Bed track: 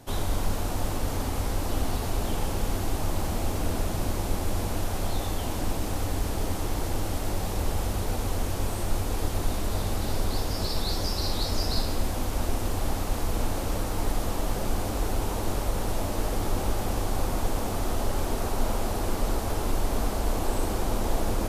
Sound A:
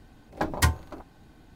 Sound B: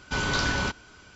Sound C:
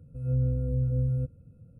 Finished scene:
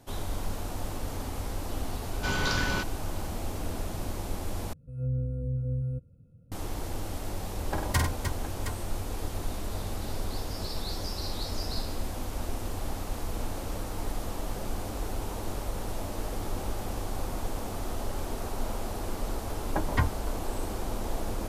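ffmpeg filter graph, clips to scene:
-filter_complex "[1:a]asplit=2[a][b];[0:a]volume=-6dB[c];[a]aecho=1:1:49|97|304|716:0.596|0.376|0.422|0.316[d];[b]lowpass=2.3k[e];[c]asplit=2[f][g];[f]atrim=end=4.734[h];[3:a]atrim=end=1.79,asetpts=PTS-STARTPTS,volume=-4dB[i];[g]atrim=start=6.516[j];[2:a]atrim=end=1.15,asetpts=PTS-STARTPTS,volume=-3dB,afade=t=in:d=0.004:c=hsin,afade=t=out:st=1.146:d=0.004:c=hsin,adelay=2120[k];[d]atrim=end=1.55,asetpts=PTS-STARTPTS,volume=-5.5dB,afade=t=in:d=0.004:c=hsin,afade=t=out:st=1.546:d=0.004:c=hsin,adelay=7320[l];[e]atrim=end=1.55,asetpts=PTS-STARTPTS,volume=-3dB,afade=t=in:d=0.004:c=hsin,afade=t=out:st=1.546:d=0.004:c=hsin,adelay=19350[m];[h][i]acrossfade=d=0.004:c1=hsin:c2=hsin[n];[n][j]acrossfade=d=0.004:c1=hsin:c2=hsin[o];[o][k][l][m]amix=inputs=4:normalize=0"

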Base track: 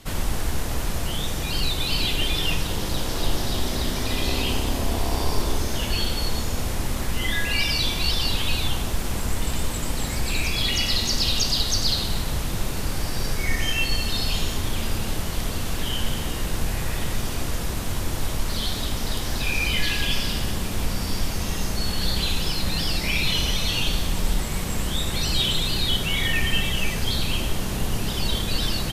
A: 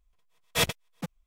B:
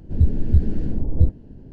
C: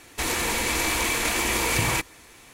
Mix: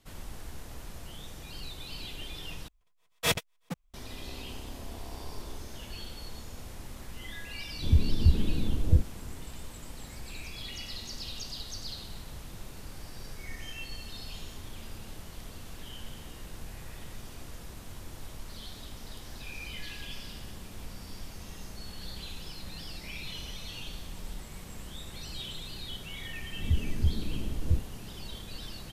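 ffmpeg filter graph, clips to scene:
-filter_complex "[2:a]asplit=2[a][b];[0:a]volume=-17.5dB,asplit=2[c][d];[c]atrim=end=2.684[e];[1:a]atrim=end=1.26,asetpts=PTS-STARTPTS,volume=-2dB[f];[d]atrim=start=3.936[g];[a]atrim=end=1.72,asetpts=PTS-STARTPTS,volume=-5.5dB,afade=t=in:d=0.004:c=hsin,afade=t=out:st=1.716:d=0.004:c=hsin,adelay=7720[h];[b]atrim=end=1.72,asetpts=PTS-STARTPTS,volume=-10.5dB,afade=t=in:d=0.004:c=hsin,afade=t=out:st=1.716:d=0.004:c=hsin,adelay=26500[i];[e][f]acrossfade=d=0.004:c1=hsin:c2=hsin[j];[j][g]acrossfade=d=0.004:c1=hsin:c2=hsin[k];[k][h][i]amix=inputs=3:normalize=0"

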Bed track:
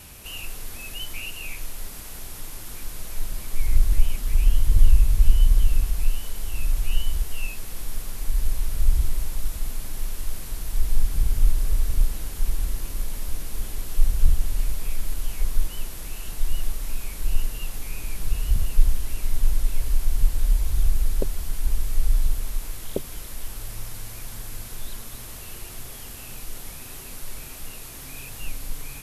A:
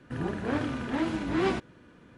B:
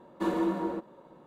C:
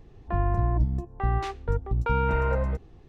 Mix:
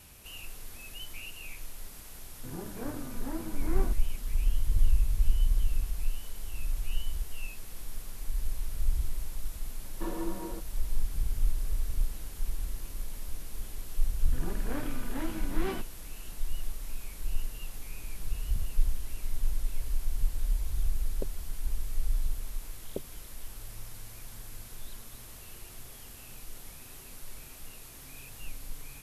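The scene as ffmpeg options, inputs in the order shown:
-filter_complex "[1:a]asplit=2[a][b];[0:a]volume=-9dB[c];[a]lowpass=1.3k,atrim=end=2.17,asetpts=PTS-STARTPTS,volume=-9dB,afade=t=in:d=0.004:c=hsin,afade=t=out:st=2.166:d=0.004:c=hsin,adelay=2330[d];[2:a]atrim=end=1.26,asetpts=PTS-STARTPTS,volume=-8.5dB,afade=t=in:d=0.004:c=hsin,afade=t=out:st=1.256:d=0.004:c=hsin,adelay=9800[e];[b]atrim=end=2.17,asetpts=PTS-STARTPTS,volume=-8dB,afade=t=in:d=0.004:c=hsin,afade=t=out:st=2.166:d=0.004:c=hsin,adelay=14220[f];[c][d][e][f]amix=inputs=4:normalize=0"

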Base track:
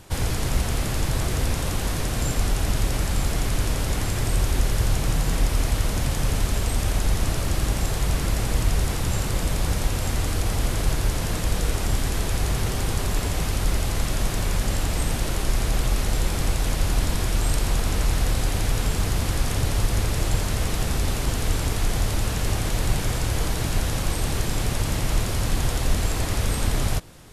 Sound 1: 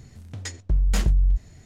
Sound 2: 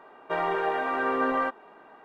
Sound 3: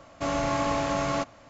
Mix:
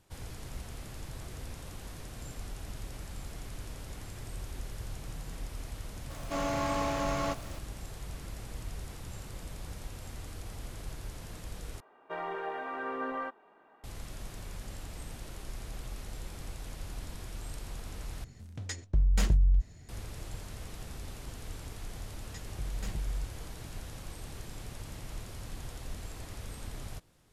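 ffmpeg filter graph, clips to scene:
-filter_complex "[1:a]asplit=2[a][b];[0:a]volume=-19dB[c];[3:a]aeval=exprs='val(0)+0.5*0.00891*sgn(val(0))':c=same[d];[c]asplit=3[e][f][g];[e]atrim=end=11.804[h];[2:a]atrim=end=2.04,asetpts=PTS-STARTPTS,volume=-10dB[i];[f]atrim=start=13.836:end=18.244[j];[a]atrim=end=1.65,asetpts=PTS-STARTPTS,volume=-4.5dB[k];[g]atrim=start=19.886[l];[d]atrim=end=1.49,asetpts=PTS-STARTPTS,volume=-5.5dB,afade=t=in:d=0.004:c=hsin,afade=t=out:st=1.486:d=0.004:c=hsin,adelay=269010S[m];[b]atrim=end=1.65,asetpts=PTS-STARTPTS,volume=-16dB,afade=t=in:d=0.004:c=hsin,afade=t=out:st=1.646:d=0.004:c=hsin,adelay=21890[n];[h][i]acrossfade=d=0.004:c1=hsin:c2=hsin[o];[o][j]acrossfade=d=0.004:c1=hsin:c2=hsin[p];[p][k]acrossfade=d=0.004:c1=hsin:c2=hsin[q];[q][l]acrossfade=d=0.004:c1=hsin:c2=hsin[r];[r][m][n]amix=inputs=3:normalize=0"

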